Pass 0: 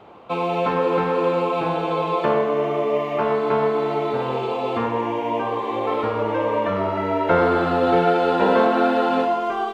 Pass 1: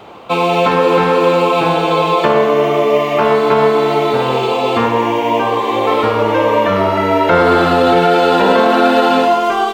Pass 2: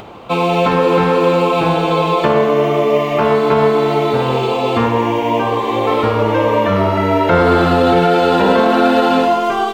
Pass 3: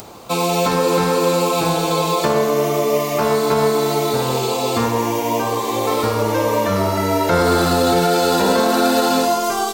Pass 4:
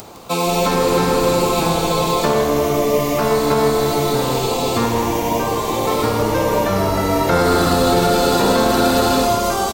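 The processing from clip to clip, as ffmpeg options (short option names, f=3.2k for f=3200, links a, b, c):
-af "highshelf=f=3.4k:g=12,alimiter=level_in=9.5dB:limit=-1dB:release=50:level=0:latency=1,volume=-1dB"
-af "lowshelf=f=190:g=9.5,acompressor=mode=upward:threshold=-28dB:ratio=2.5,volume=-2.5dB"
-af "aexciter=amount=9.2:drive=3.1:freq=4.4k,volume=-4dB"
-filter_complex "[0:a]asplit=8[a][b][c][d][e][f][g][h];[b]adelay=160,afreqshift=-150,volume=-9.5dB[i];[c]adelay=320,afreqshift=-300,volume=-14.1dB[j];[d]adelay=480,afreqshift=-450,volume=-18.7dB[k];[e]adelay=640,afreqshift=-600,volume=-23.2dB[l];[f]adelay=800,afreqshift=-750,volume=-27.8dB[m];[g]adelay=960,afreqshift=-900,volume=-32.4dB[n];[h]adelay=1120,afreqshift=-1050,volume=-37dB[o];[a][i][j][k][l][m][n][o]amix=inputs=8:normalize=0"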